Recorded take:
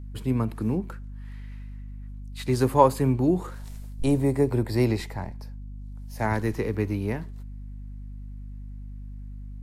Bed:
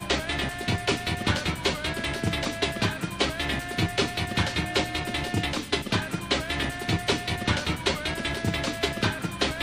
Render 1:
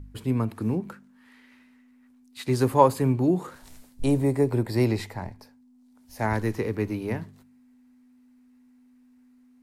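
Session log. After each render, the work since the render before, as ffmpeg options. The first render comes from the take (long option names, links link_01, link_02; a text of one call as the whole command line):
ffmpeg -i in.wav -af "bandreject=frequency=50:width_type=h:width=4,bandreject=frequency=100:width_type=h:width=4,bandreject=frequency=150:width_type=h:width=4,bandreject=frequency=200:width_type=h:width=4" out.wav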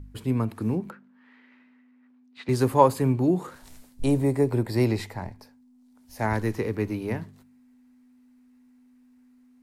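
ffmpeg -i in.wav -filter_complex "[0:a]asettb=1/sr,asplit=3[link_01][link_02][link_03];[link_01]atrim=end=0.904[link_04];[link_02]atrim=start=0.9:end=2.49,asetpts=PTS-STARTPTS,afade=type=in:duration=0.004:curve=qsin,afade=type=out:start_time=1.586:duration=0.004:curve=qsin,highpass=180,lowpass=2700[link_05];[link_03]atrim=start=2.486[link_06];[link_04][link_05]acrossfade=duration=0.004:curve1=hsin:curve2=qsin[link_07];[link_07][link_06]acrossfade=duration=0.004:curve1=qsin:curve2=hsin" out.wav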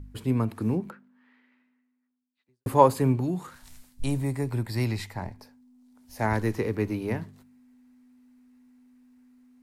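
ffmpeg -i in.wav -filter_complex "[0:a]asettb=1/sr,asplit=3[link_01][link_02][link_03];[link_01]atrim=end=3.204[link_04];[link_02]atrim=start=3.2:end=5.16,asetpts=PTS-STARTPTS,afade=type=in:duration=0.004:curve=qsin,afade=type=out:start_time=1.956:duration=0.004:curve=qsin,equalizer=frequency=440:width=0.78:gain=-11[link_05];[link_03]atrim=start=5.156[link_06];[link_04][link_05]acrossfade=duration=0.004:curve1=hsin:curve2=qsin[link_07];[link_07][link_06]acrossfade=duration=0.004:curve1=qsin:curve2=hsin,asplit=2[link_08][link_09];[link_08]atrim=end=2.66,asetpts=PTS-STARTPTS,afade=type=out:start_time=0.76:duration=1.9:curve=qua[link_10];[link_09]atrim=start=2.66,asetpts=PTS-STARTPTS,afade=type=in:duration=0.004:curve=hsin[link_11];[link_10][link_11]concat=n=2:v=0:a=1" out.wav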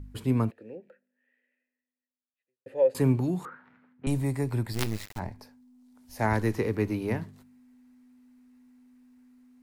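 ffmpeg -i in.wav -filter_complex "[0:a]asettb=1/sr,asplit=3[link_01][link_02][link_03];[link_01]atrim=end=0.514[link_04];[link_02]atrim=start=0.51:end=2.95,asetpts=PTS-STARTPTS,afade=type=in:duration=0.004:curve=qsin,afade=type=out:start_time=2.436:duration=0.004:curve=qsin,asplit=3[link_05][link_06][link_07];[link_05]bandpass=frequency=530:width_type=q:width=8,volume=0dB[link_08];[link_06]bandpass=frequency=1840:width_type=q:width=8,volume=-6dB[link_09];[link_07]bandpass=frequency=2480:width_type=q:width=8,volume=-9dB[link_10];[link_08][link_09][link_10]amix=inputs=3:normalize=0[link_11];[link_03]atrim=start=2.946[link_12];[link_04][link_11]acrossfade=duration=0.004:curve1=hsin:curve2=qsin[link_13];[link_13][link_12]acrossfade=duration=0.004:curve1=qsin:curve2=hsin,asettb=1/sr,asplit=3[link_14][link_15][link_16];[link_14]atrim=end=3.454[link_17];[link_15]atrim=start=3.45:end=4.07,asetpts=PTS-STARTPTS,afade=type=in:duration=0.004:curve=qsin,afade=type=out:start_time=0.616:duration=0.004:curve=qsin,highpass=frequency=160:width=0.5412,highpass=frequency=160:width=1.3066,equalizer=frequency=460:width_type=q:width=4:gain=6,equalizer=frequency=660:width_type=q:width=4:gain=-4,equalizer=frequency=1400:width_type=q:width=4:gain=7,lowpass=frequency=2000:width=0.5412,lowpass=frequency=2000:width=1.3066[link_18];[link_16]atrim=start=4.066[link_19];[link_17][link_18]acrossfade=duration=0.004:curve1=hsin:curve2=qsin[link_20];[link_20][link_19]acrossfade=duration=0.004:curve1=qsin:curve2=hsin,asplit=3[link_21][link_22][link_23];[link_21]afade=type=out:start_time=4.72:duration=0.02[link_24];[link_22]acrusher=bits=4:dc=4:mix=0:aa=0.000001,afade=type=in:start_time=4.72:duration=0.02,afade=type=out:start_time=5.18:duration=0.02[link_25];[link_23]afade=type=in:start_time=5.18:duration=0.02[link_26];[link_24][link_25][link_26]amix=inputs=3:normalize=0" out.wav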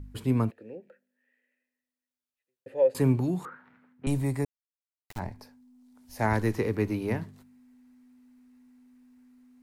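ffmpeg -i in.wav -filter_complex "[0:a]asplit=3[link_01][link_02][link_03];[link_01]atrim=end=4.45,asetpts=PTS-STARTPTS,afade=type=out:start_time=4.446:duration=0.004:curve=hsin[link_04];[link_02]atrim=start=4.45:end=5.09,asetpts=PTS-STARTPTS,volume=0[link_05];[link_03]atrim=start=5.09,asetpts=PTS-STARTPTS,afade=type=in:duration=0.004:curve=hsin[link_06];[link_04][link_05][link_06]concat=n=3:v=0:a=1" out.wav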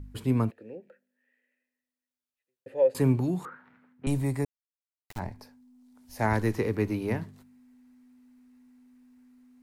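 ffmpeg -i in.wav -af anull out.wav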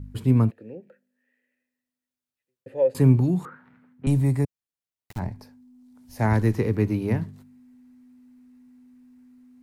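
ffmpeg -i in.wav -af "equalizer=frequency=130:width=0.59:gain=8.5" out.wav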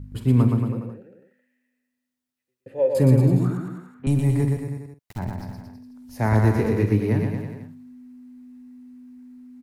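ffmpeg -i in.wav -filter_complex "[0:a]asplit=2[link_01][link_02];[link_02]adelay=48,volume=-13dB[link_03];[link_01][link_03]amix=inputs=2:normalize=0,aecho=1:1:120|228|325.2|412.7|491.4:0.631|0.398|0.251|0.158|0.1" out.wav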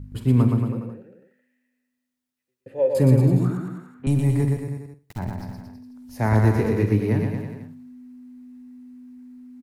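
ffmpeg -i in.wav -af "aecho=1:1:92|184|276:0.0841|0.0294|0.0103" out.wav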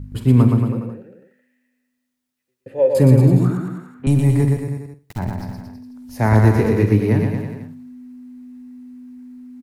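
ffmpeg -i in.wav -af "volume=5dB,alimiter=limit=-2dB:level=0:latency=1" out.wav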